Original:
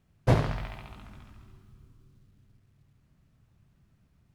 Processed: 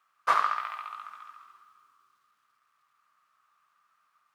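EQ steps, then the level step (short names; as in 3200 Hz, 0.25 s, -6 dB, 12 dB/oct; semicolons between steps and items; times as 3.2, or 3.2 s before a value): resonant high-pass 1200 Hz, resonance Q 11; 0.0 dB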